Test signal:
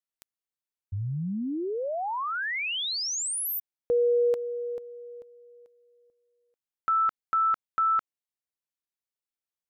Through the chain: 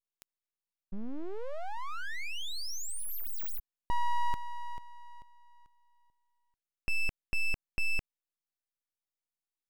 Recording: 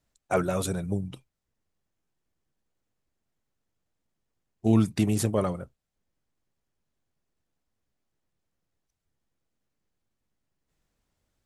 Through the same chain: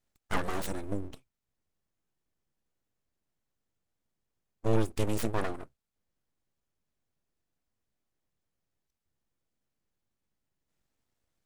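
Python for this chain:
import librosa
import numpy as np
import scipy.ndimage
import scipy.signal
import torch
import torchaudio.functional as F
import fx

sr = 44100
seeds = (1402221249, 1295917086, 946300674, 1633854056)

y = np.abs(x)
y = y * 10.0 ** (-3.0 / 20.0)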